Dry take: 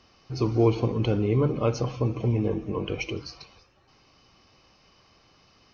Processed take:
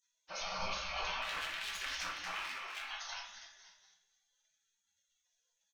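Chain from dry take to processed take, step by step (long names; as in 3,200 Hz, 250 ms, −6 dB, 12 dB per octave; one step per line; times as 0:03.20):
low-shelf EQ 120 Hz −3 dB
repeating echo 247 ms, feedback 45%, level −11 dB
brickwall limiter −17 dBFS, peak gain reduction 8 dB
high-frequency loss of the air 76 metres
0:01.22–0:02.83: hard clipping −28 dBFS, distortion −9 dB
gate on every frequency bin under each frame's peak −30 dB weak
rectangular room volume 180 cubic metres, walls mixed, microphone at 1.1 metres
level +9.5 dB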